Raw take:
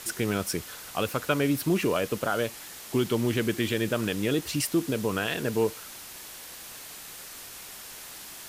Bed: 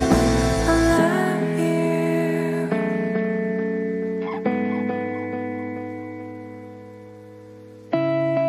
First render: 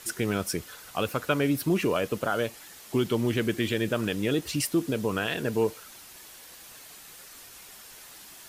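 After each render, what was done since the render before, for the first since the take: noise reduction 6 dB, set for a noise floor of -44 dBFS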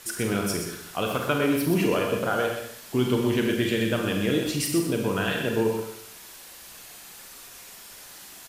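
delay 125 ms -7 dB; Schroeder reverb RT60 0.71 s, combs from 32 ms, DRR 2.5 dB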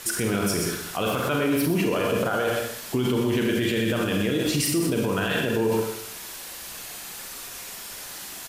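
in parallel at -1 dB: compressor with a negative ratio -28 dBFS; on the sum: peak limiter -15 dBFS, peak gain reduction 7.5 dB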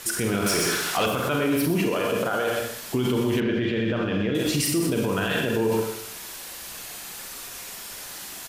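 0.46–1.06 s: overdrive pedal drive 18 dB, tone 5.8 kHz, clips at -14.5 dBFS; 1.88–2.58 s: bass shelf 120 Hz -10 dB; 3.40–4.35 s: distance through air 240 m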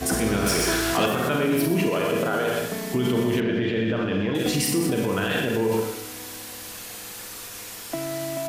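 add bed -9.5 dB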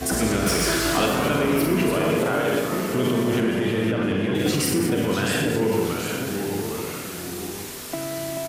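ever faster or slower copies 98 ms, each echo -2 st, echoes 2, each echo -6 dB; echo from a far wall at 180 m, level -9 dB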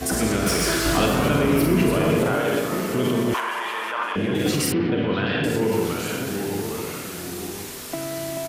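0.86–2.35 s: bass shelf 150 Hz +9 dB; 3.34–4.16 s: resonant high-pass 1 kHz, resonance Q 7; 4.72–5.44 s: steep low-pass 3.8 kHz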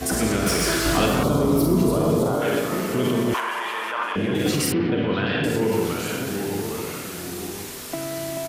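1.23–2.42 s: high-order bell 2.1 kHz -15.5 dB 1.2 oct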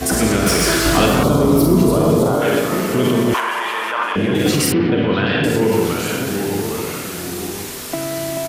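trim +6 dB; peak limiter -3 dBFS, peak gain reduction 1 dB

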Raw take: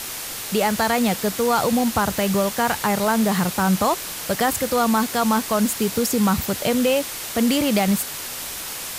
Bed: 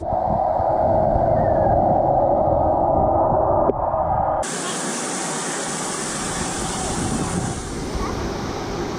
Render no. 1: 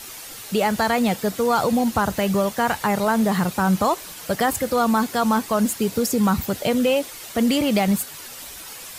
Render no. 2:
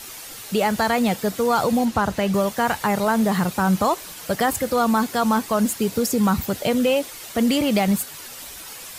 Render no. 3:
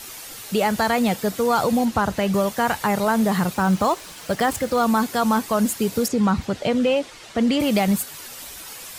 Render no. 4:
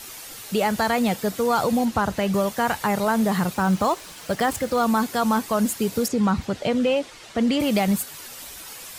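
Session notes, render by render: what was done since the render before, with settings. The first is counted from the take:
noise reduction 9 dB, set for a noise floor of -32 dBFS
1.85–2.34 s: treble shelf 9.5 kHz -11 dB
3.54–4.83 s: median filter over 3 samples; 6.08–7.60 s: distance through air 85 m
trim -1.5 dB

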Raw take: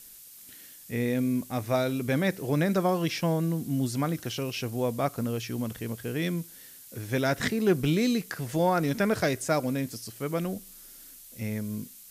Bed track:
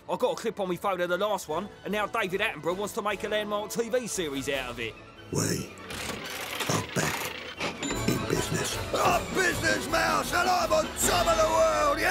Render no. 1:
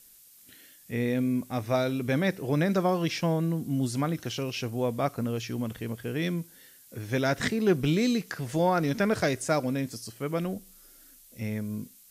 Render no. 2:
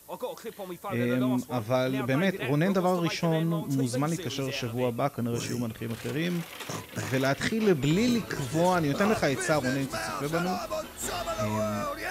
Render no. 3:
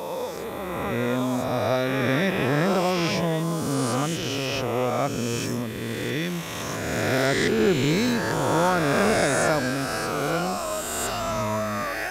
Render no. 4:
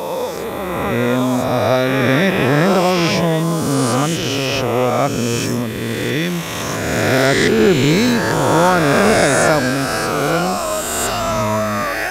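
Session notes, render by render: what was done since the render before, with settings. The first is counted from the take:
noise print and reduce 6 dB
add bed track -8.5 dB
reverse spectral sustain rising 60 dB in 2.36 s
trim +8.5 dB; peak limiter -1 dBFS, peak gain reduction 1.5 dB

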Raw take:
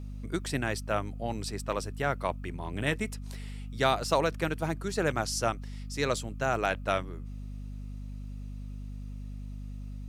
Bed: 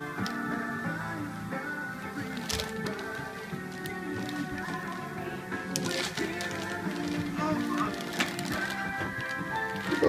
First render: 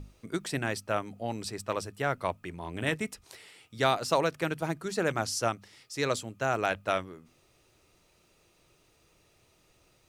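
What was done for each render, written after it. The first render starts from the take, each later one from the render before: hum notches 50/100/150/200/250 Hz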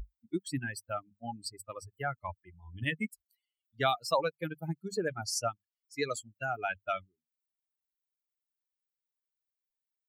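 expander on every frequency bin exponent 3; in parallel at +1.5 dB: compression, threshold -42 dBFS, peak gain reduction 16 dB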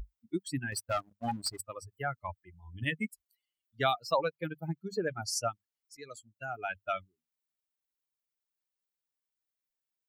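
0.72–1.61 s: waveshaping leveller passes 2; 3.93–5.15 s: peaking EQ 9.5 kHz -14.5 dB 0.8 oct; 5.97–6.94 s: fade in linear, from -18 dB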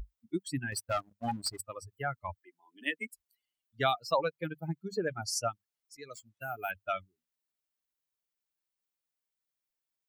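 2.40–3.10 s: steep high-pass 260 Hz 48 dB/octave; 6.13–6.71 s: careless resampling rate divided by 3×, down none, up hold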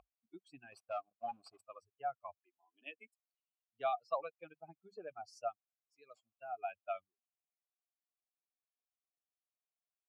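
vowel filter a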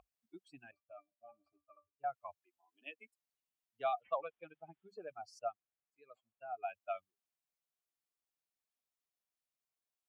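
0.71–2.04 s: pitch-class resonator D, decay 0.15 s; 4.01–4.88 s: careless resampling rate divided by 6×, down none, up filtered; 5.39–6.63 s: boxcar filter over 8 samples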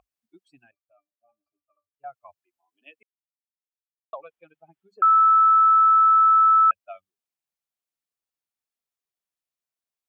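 0.63–2.07 s: dip -9.5 dB, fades 0.13 s; 3.03–4.13 s: mute; 5.02–6.71 s: bleep 1.31 kHz -12.5 dBFS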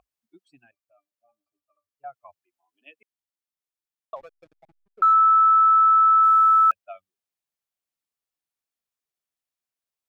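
4.16–5.13 s: hysteresis with a dead band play -46.5 dBFS; 6.23–6.85 s: block-companded coder 7-bit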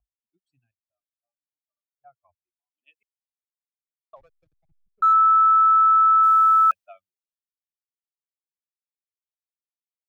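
three bands expanded up and down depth 70%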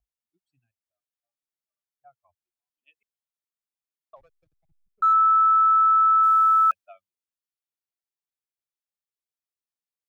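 trim -2 dB

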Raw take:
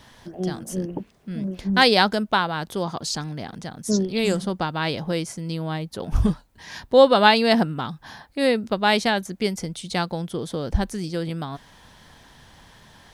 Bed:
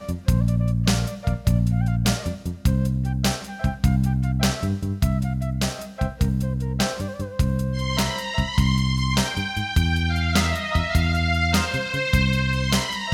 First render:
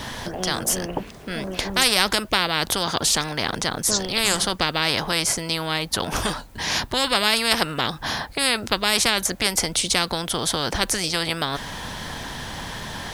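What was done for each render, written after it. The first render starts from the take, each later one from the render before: spectrum-flattening compressor 4:1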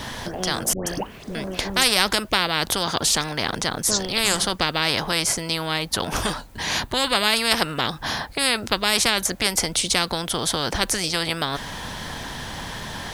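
0.73–1.35 s: phase dispersion highs, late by 137 ms, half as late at 1.1 kHz; 6.62–7.36 s: band-stop 5.3 kHz, Q 7.9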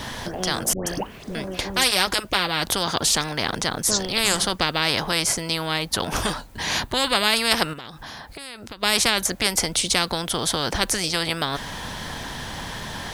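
1.42–2.64 s: comb of notches 220 Hz; 7.73–8.83 s: compression 4:1, threshold -36 dBFS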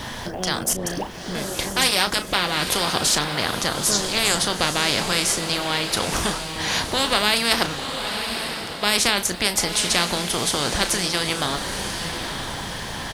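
doubling 34 ms -11 dB; echo that smears into a reverb 918 ms, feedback 41%, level -7 dB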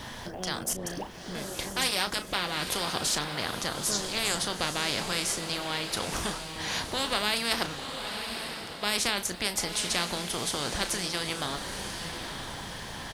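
trim -8.5 dB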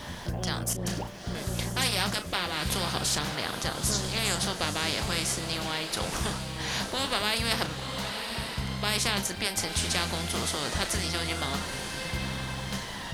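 add bed -14.5 dB

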